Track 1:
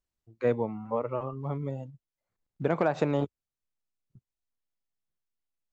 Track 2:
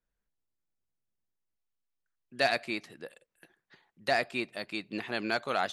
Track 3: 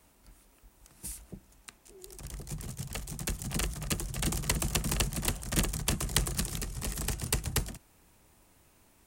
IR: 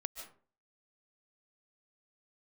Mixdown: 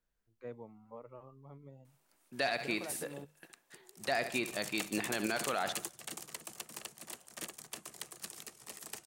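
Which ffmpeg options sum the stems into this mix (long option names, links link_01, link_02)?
-filter_complex "[0:a]bandreject=frequency=50:width_type=h:width=6,bandreject=frequency=100:width_type=h:width=6,bandreject=frequency=150:width_type=h:width=6,volume=-19.5dB[link_01];[1:a]volume=1dB,asplit=3[link_02][link_03][link_04];[link_03]volume=-14.5dB[link_05];[2:a]highpass=380,alimiter=limit=-16dB:level=0:latency=1:release=293,adelay=1850,volume=0.5dB[link_06];[link_04]apad=whole_len=481167[link_07];[link_06][link_07]sidechaingate=range=-10dB:threshold=-56dB:ratio=16:detection=peak[link_08];[link_05]aecho=0:1:67|134|201|268|335:1|0.37|0.137|0.0507|0.0187[link_09];[link_01][link_02][link_08][link_09]amix=inputs=4:normalize=0,alimiter=limit=-21.5dB:level=0:latency=1:release=54"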